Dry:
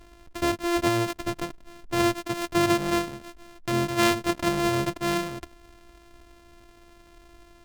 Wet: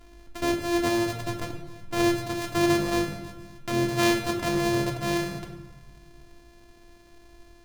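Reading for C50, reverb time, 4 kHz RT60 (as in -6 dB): 6.5 dB, 1.2 s, 0.80 s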